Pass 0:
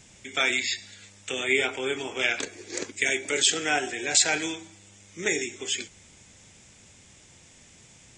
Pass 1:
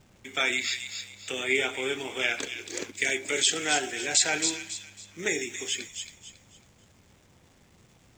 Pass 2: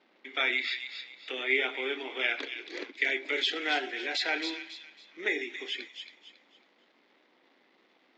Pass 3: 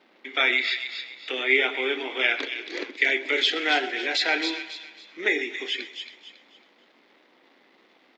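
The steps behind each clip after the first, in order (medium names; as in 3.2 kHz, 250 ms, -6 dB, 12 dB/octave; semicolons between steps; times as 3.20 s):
hysteresis with a dead band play -45.5 dBFS; feedback echo behind a high-pass 275 ms, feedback 32%, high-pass 2.9 kHz, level -5 dB; trim -2 dB
elliptic band-pass 280–4200 Hz, stop band 40 dB; peaking EQ 2 kHz +5.5 dB 0.25 oct; trim -2.5 dB
feedback delay 128 ms, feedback 57%, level -19 dB; trim +6.5 dB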